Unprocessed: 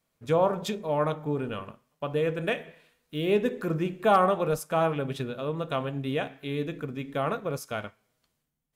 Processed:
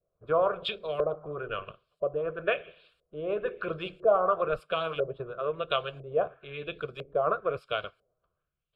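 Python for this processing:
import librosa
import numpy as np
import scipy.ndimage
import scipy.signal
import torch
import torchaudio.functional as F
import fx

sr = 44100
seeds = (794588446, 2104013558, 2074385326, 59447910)

y = fx.filter_lfo_lowpass(x, sr, shape='saw_up', hz=1.0, low_hz=520.0, high_hz=6700.0, q=1.7)
y = fx.hpss(y, sr, part='harmonic', gain_db=-13)
y = fx.fixed_phaser(y, sr, hz=1300.0, stages=8)
y = F.gain(torch.from_numpy(y), 5.0).numpy()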